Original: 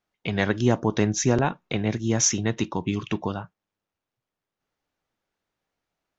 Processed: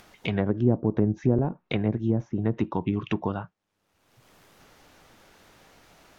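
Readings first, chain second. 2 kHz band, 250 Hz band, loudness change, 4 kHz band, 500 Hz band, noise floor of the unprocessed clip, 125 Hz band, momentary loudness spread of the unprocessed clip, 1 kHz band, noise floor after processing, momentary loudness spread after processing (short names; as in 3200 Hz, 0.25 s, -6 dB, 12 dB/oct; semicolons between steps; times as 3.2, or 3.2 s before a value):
-8.0 dB, 0.0 dB, -2.0 dB, -10.0 dB, -2.0 dB, under -85 dBFS, 0.0 dB, 8 LU, -5.5 dB, -77 dBFS, 7 LU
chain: treble ducked by the level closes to 480 Hz, closed at -18.5 dBFS; upward compressor, threshold -33 dBFS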